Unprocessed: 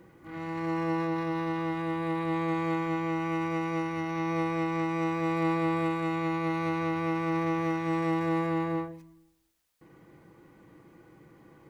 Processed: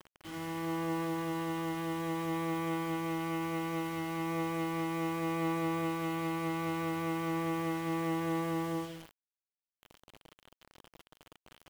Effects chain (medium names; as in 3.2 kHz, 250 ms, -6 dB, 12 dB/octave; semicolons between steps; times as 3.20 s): hum notches 60/120/180/240/300/360/420/480 Hz; in parallel at 0 dB: compression 6:1, threshold -38 dBFS, peak gain reduction 13 dB; on the sum: treble shelf 4.7 kHz -6 dB; bit crusher 7-bit; peaking EQ 3.1 kHz +8.5 dB 0.27 oct; trim -7 dB